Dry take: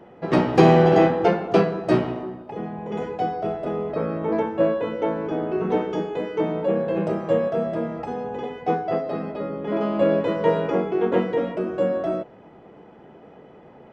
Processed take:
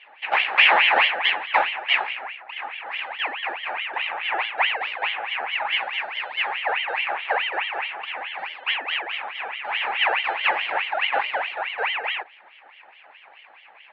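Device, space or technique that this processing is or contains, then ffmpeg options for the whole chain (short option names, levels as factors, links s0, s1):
voice changer toy: -af "aeval=exprs='val(0)*sin(2*PI*1800*n/s+1800*0.45/4.7*sin(2*PI*4.7*n/s))':c=same,highpass=510,equalizer=f=820:t=q:w=4:g=9,equalizer=f=1400:t=q:w=4:g=-5,equalizer=f=2600:t=q:w=4:g=5,lowpass=f=3600:w=0.5412,lowpass=f=3600:w=1.3066,volume=0.891"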